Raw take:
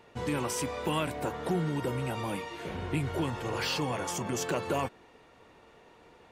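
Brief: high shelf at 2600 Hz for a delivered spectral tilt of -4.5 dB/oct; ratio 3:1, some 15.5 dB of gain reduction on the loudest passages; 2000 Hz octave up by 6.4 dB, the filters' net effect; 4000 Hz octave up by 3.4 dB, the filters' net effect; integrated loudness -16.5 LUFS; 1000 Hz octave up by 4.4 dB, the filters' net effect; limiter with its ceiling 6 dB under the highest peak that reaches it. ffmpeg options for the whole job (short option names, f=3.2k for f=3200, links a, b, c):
-af "equalizer=f=1k:t=o:g=4,equalizer=f=2k:t=o:g=8,highshelf=f=2.6k:g=-5,equalizer=f=4k:t=o:g=5.5,acompressor=threshold=-46dB:ratio=3,volume=29.5dB,alimiter=limit=-6dB:level=0:latency=1"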